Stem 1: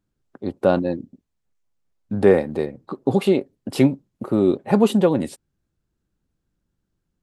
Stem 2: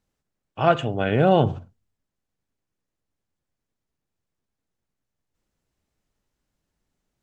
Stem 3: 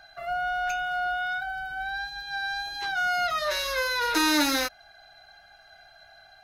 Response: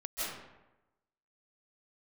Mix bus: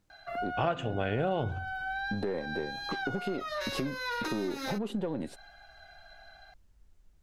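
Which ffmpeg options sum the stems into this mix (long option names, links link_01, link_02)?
-filter_complex "[0:a]aeval=exprs='if(lt(val(0),0),0.708*val(0),val(0))':channel_layout=same,aemphasis=mode=reproduction:type=cd,alimiter=limit=-9.5dB:level=0:latency=1:release=36,volume=-1.5dB[link_01];[1:a]asubboost=boost=12:cutoff=62,volume=2.5dB[link_02];[2:a]highshelf=frequency=5400:gain=-8,acompressor=threshold=-26dB:ratio=6,adelay=100,volume=-0.5dB[link_03];[link_01][link_03]amix=inputs=2:normalize=0,asoftclip=type=tanh:threshold=-10dB,acompressor=threshold=-31dB:ratio=4,volume=0dB[link_04];[link_02][link_04]amix=inputs=2:normalize=0,acompressor=threshold=-27dB:ratio=6"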